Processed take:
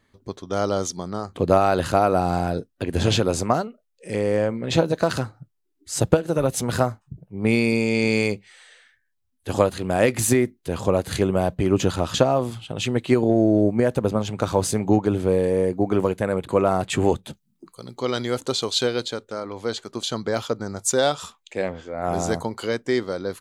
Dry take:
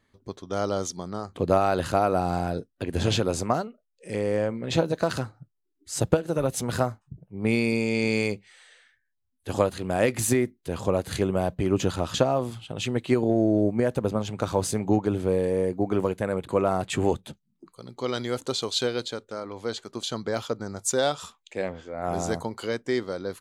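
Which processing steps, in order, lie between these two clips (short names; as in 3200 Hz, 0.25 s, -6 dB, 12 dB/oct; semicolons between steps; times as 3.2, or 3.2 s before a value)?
17.3–17.99 high shelf 5800 Hz +7 dB; gain +4 dB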